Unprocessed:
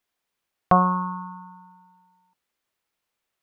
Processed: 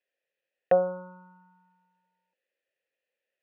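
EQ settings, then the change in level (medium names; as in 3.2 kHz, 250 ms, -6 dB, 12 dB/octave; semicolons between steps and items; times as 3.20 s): vowel filter e; +8.5 dB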